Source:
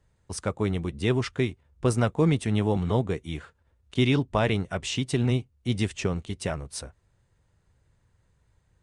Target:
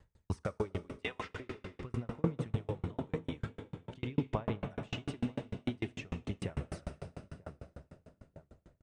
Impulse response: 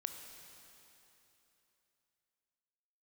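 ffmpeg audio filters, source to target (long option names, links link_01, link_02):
-filter_complex "[0:a]lowpass=8800,acrossover=split=3000[link_01][link_02];[link_02]acompressor=threshold=-51dB:ratio=4:attack=1:release=60[link_03];[link_01][link_03]amix=inputs=2:normalize=0,asettb=1/sr,asplit=3[link_04][link_05][link_06];[link_04]atrim=end=0.974[link_07];[link_05]atrim=start=0.97:end=1.4,asetpts=PTS-STARTPTS,afade=type=in:duration=0.004:curve=qsin,afade=type=out:start_time=0.426:duration=0.004:curve=qsin,highpass=frequency=620:width=0.5412,highpass=frequency=620:width=1.3066[link_08];[link_06]atrim=start=1.396[link_09];[link_07][link_08]acrossfade=duration=0.004:curve1=hsin:curve2=qsin[link_10];[link_10][link_09]acrossfade=duration=0.004:curve1=qsin:curve2=hsin,alimiter=limit=-22dB:level=0:latency=1:release=425,acompressor=threshold=-28dB:ratio=6,aphaser=in_gain=1:out_gain=1:delay=4:decay=0.47:speed=0.46:type=sinusoidal,asplit=2[link_11][link_12];[link_12]adelay=941,lowpass=frequency=1100:poles=1,volume=-11dB,asplit=2[link_13][link_14];[link_14]adelay=941,lowpass=frequency=1100:poles=1,volume=0.32,asplit=2[link_15][link_16];[link_16]adelay=941,lowpass=frequency=1100:poles=1,volume=0.32[link_17];[link_11][link_13][link_15][link_17]amix=inputs=4:normalize=0[link_18];[1:a]atrim=start_sample=2205,asetrate=38367,aresample=44100[link_19];[link_18][link_19]afir=irnorm=-1:irlink=0,aeval=exprs='val(0)*pow(10,-37*if(lt(mod(6.7*n/s,1),2*abs(6.7)/1000),1-mod(6.7*n/s,1)/(2*abs(6.7)/1000),(mod(6.7*n/s,1)-2*abs(6.7)/1000)/(1-2*abs(6.7)/1000))/20)':channel_layout=same,volume=5dB"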